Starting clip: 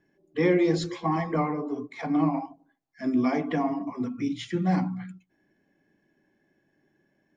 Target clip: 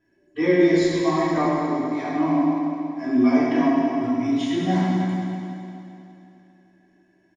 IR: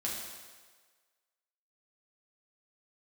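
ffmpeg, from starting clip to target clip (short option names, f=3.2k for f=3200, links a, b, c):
-filter_complex "[0:a]aecho=1:1:3.1:0.53[a];[1:a]atrim=start_sample=2205,asetrate=22050,aresample=44100[b];[a][b]afir=irnorm=-1:irlink=0,volume=-4dB"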